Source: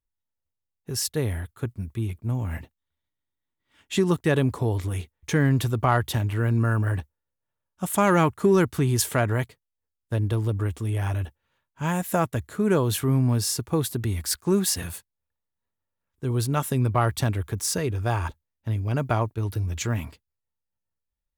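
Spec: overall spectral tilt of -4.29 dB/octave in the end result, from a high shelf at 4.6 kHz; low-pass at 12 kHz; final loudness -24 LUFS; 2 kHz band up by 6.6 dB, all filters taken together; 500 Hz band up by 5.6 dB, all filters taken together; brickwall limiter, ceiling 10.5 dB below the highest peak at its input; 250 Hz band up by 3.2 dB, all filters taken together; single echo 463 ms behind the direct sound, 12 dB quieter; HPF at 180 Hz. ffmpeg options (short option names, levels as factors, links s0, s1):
-af "highpass=180,lowpass=12000,equalizer=f=250:t=o:g=4.5,equalizer=f=500:t=o:g=5.5,equalizer=f=2000:t=o:g=7.5,highshelf=f=4600:g=5.5,alimiter=limit=0.251:level=0:latency=1,aecho=1:1:463:0.251,volume=1.12"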